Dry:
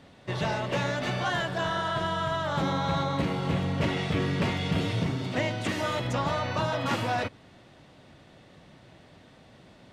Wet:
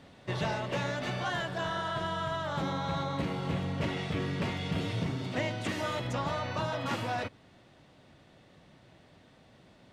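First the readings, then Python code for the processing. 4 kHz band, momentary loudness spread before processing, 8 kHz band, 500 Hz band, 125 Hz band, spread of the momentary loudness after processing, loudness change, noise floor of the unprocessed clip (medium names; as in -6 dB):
-4.5 dB, 2 LU, -4.5 dB, -4.5 dB, -4.5 dB, 1 LU, -4.5 dB, -55 dBFS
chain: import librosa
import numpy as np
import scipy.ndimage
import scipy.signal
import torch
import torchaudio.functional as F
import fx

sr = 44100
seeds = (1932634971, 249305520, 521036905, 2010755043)

y = fx.rider(x, sr, range_db=4, speed_s=0.5)
y = y * 10.0 ** (-4.5 / 20.0)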